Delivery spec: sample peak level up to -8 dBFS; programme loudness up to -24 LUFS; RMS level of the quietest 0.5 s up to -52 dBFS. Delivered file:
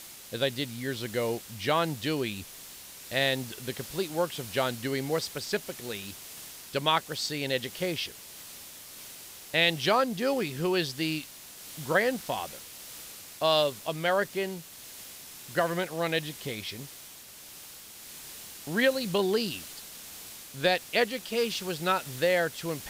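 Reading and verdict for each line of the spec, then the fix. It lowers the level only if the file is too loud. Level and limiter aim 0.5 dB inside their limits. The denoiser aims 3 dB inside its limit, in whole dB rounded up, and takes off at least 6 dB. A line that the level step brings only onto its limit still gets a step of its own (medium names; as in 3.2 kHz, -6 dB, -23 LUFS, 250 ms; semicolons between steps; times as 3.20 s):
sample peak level -9.5 dBFS: pass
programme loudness -29.5 LUFS: pass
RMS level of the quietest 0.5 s -48 dBFS: fail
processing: noise reduction 7 dB, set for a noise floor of -48 dBFS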